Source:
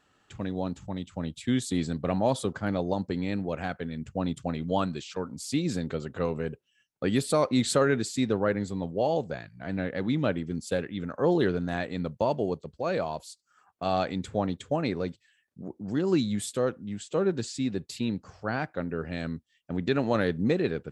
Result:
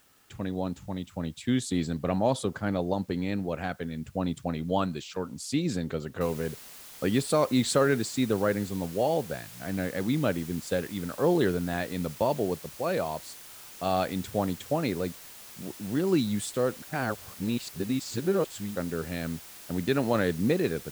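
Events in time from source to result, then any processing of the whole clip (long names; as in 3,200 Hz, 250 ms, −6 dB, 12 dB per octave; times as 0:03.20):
0:06.21: noise floor change −64 dB −47 dB
0:16.82–0:18.76: reverse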